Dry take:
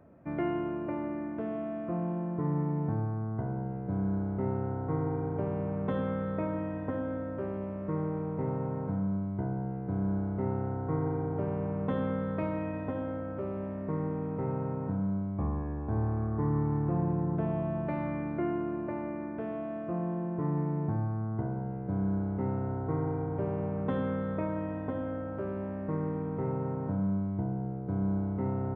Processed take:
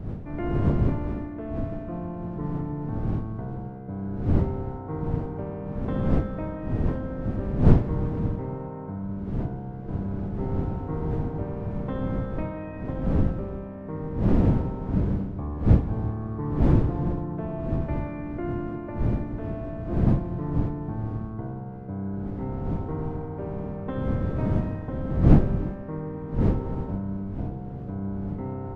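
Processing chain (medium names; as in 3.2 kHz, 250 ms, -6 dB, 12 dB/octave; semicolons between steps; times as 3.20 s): wind noise 170 Hz -26 dBFS; gated-style reverb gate 400 ms flat, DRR 11 dB; trim -1 dB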